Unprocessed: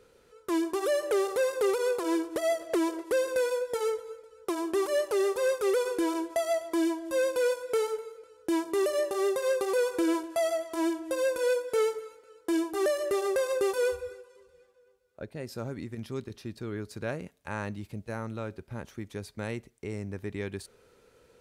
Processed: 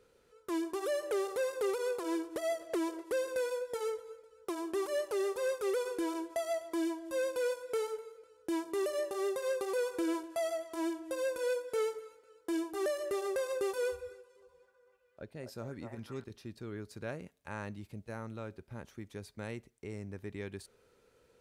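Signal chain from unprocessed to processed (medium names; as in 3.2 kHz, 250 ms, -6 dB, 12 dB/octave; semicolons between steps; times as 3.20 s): 14.17–16.24 s: repeats whose band climbs or falls 250 ms, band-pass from 830 Hz, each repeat 0.7 oct, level 0 dB; trim -6.5 dB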